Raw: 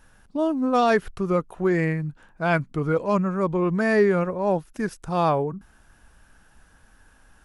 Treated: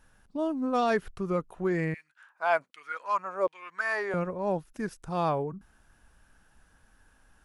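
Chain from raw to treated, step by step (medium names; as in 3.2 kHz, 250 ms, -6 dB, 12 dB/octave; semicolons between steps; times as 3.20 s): 1.94–4.14 s: LFO high-pass saw down 1.3 Hz 500–2700 Hz; trim -6.5 dB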